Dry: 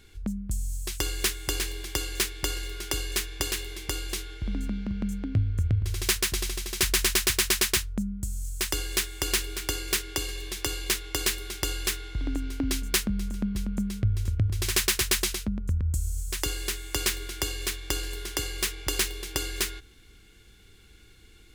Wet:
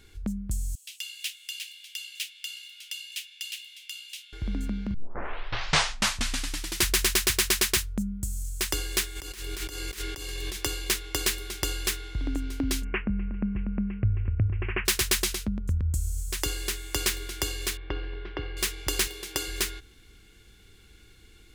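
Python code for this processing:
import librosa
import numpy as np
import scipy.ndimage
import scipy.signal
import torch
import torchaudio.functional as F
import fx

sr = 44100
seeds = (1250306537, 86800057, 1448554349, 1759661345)

y = fx.ladder_highpass(x, sr, hz=2500.0, resonance_pct=60, at=(0.75, 4.33))
y = fx.high_shelf(y, sr, hz=7800.0, db=4.5, at=(7.78, 8.43))
y = fx.over_compress(y, sr, threshold_db=-37.0, ratio=-1.0, at=(9.15, 10.55), fade=0.02)
y = fx.steep_lowpass(y, sr, hz=2800.0, slope=96, at=(12.83, 14.85), fade=0.02)
y = fx.gaussian_blur(y, sr, sigma=3.3, at=(17.77, 18.57))
y = fx.low_shelf(y, sr, hz=110.0, db=-11.0, at=(19.07, 19.48))
y = fx.edit(y, sr, fx.tape_start(start_s=4.94, length_s=1.98), tone=tone)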